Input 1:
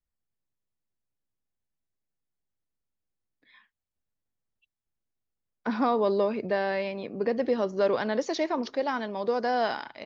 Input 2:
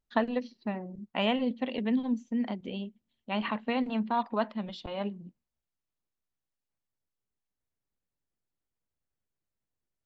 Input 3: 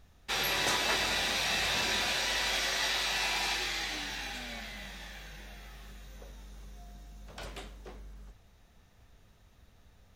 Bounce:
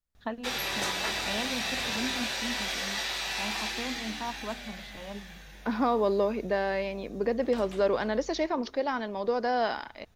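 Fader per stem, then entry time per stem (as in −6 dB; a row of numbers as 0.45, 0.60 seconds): −1.0, −7.5, −1.5 decibels; 0.00, 0.10, 0.15 seconds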